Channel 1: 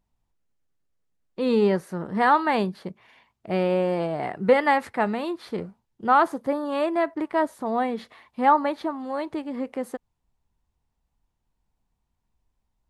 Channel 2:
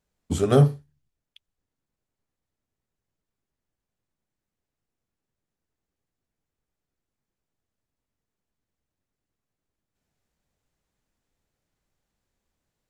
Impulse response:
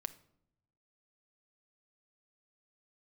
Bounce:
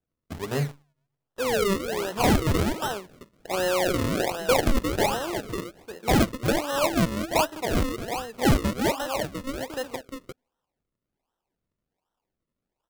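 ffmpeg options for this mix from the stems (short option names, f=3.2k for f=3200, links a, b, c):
-filter_complex "[0:a]bass=f=250:g=-14,treble=f=4k:g=-10,asoftclip=type=hard:threshold=-18dB,lowshelf=f=290:g=-11.5,volume=0dB,asplit=3[a][b][c];[b]volume=-3.5dB[d];[c]volume=-3dB[e];[1:a]acrusher=bits=6:dc=4:mix=0:aa=0.000001,lowpass=f=2.5k:t=q:w=1.6,volume=-11dB,asplit=2[f][g];[g]volume=-22dB[h];[2:a]atrim=start_sample=2205[i];[d][h]amix=inputs=2:normalize=0[j];[j][i]afir=irnorm=-1:irlink=0[k];[e]aecho=0:1:353:1[l];[a][f][k][l]amix=inputs=4:normalize=0,acrusher=samples=38:mix=1:aa=0.000001:lfo=1:lforange=38:lforate=1.3"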